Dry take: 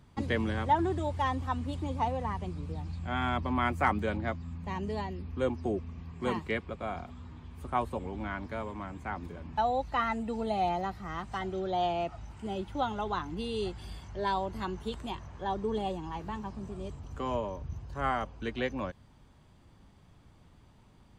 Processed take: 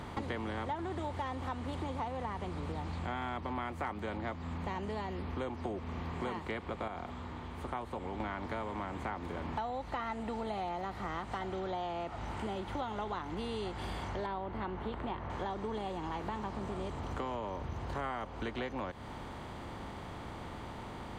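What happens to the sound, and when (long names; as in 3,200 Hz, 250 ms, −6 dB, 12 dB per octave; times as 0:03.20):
0:06.88–0:08.20: clip gain −9.5 dB
0:14.26–0:15.30: high-frequency loss of the air 480 metres
whole clip: compressor on every frequency bin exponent 0.6; downward compressor, threshold −35 dBFS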